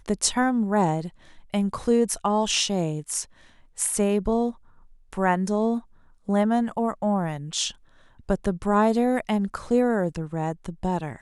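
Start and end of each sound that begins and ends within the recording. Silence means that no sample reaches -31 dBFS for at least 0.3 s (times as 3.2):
1.54–3.23
3.79–4.51
5.13–5.79
6.29–7.71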